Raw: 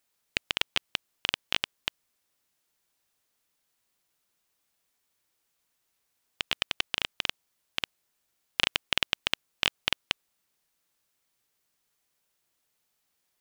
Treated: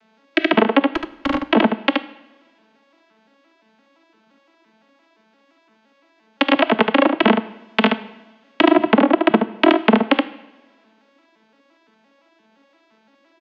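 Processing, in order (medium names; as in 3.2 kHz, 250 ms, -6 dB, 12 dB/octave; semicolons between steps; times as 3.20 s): vocoder on a broken chord major triad, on A3, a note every 172 ms; low-pass that closes with the level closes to 940 Hz, closed at -28 dBFS; in parallel at +2 dB: gain riding; 0.90–1.43 s: on the sum: overload inside the chain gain 29.5 dB; distance through air 250 m; on a send: delay 74 ms -6 dB; on the sum: two-slope reverb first 0.77 s, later 2.1 s, from -19 dB, DRR 14 dB; loudness maximiser +15.5 dB; trim -1 dB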